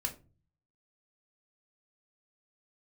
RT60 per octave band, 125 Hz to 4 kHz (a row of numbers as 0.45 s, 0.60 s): 0.80 s, 0.55 s, 0.40 s, 0.30 s, 0.25 s, 0.20 s